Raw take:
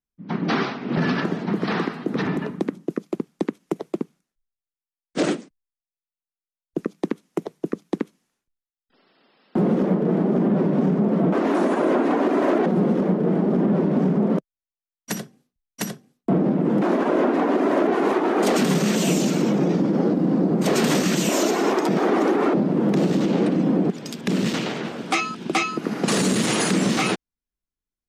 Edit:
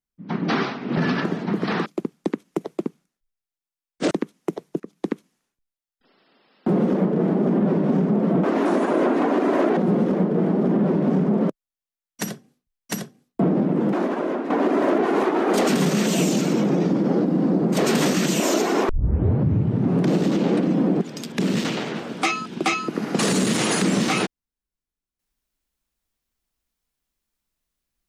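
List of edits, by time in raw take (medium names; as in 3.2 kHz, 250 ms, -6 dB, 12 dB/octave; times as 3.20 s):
1.86–3.01 s: delete
5.26–7.00 s: delete
7.69–7.99 s: fade in, from -16 dB
16.59–17.39 s: fade out, to -8.5 dB
21.78 s: tape start 1.28 s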